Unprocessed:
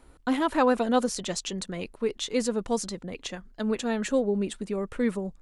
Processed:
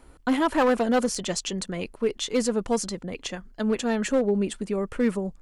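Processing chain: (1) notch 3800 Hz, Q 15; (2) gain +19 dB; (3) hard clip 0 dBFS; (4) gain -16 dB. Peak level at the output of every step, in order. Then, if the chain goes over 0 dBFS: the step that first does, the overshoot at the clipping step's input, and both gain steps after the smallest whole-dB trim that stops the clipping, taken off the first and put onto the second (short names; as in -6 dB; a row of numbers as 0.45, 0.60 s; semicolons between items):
-10.5, +8.5, 0.0, -16.0 dBFS; step 2, 8.5 dB; step 2 +10 dB, step 4 -7 dB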